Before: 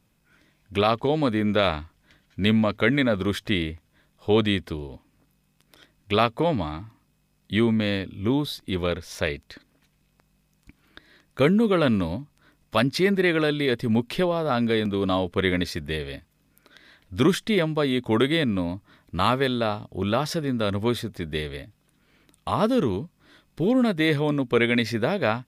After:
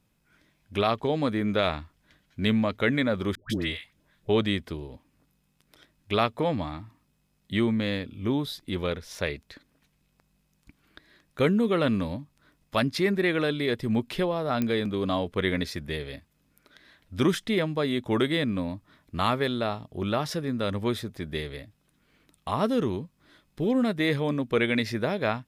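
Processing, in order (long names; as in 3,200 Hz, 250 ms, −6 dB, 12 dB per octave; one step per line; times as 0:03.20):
0:03.35–0:04.29: all-pass dispersion highs, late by 149 ms, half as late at 680 Hz
digital clicks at 0:14.62, −11 dBFS
level −3.5 dB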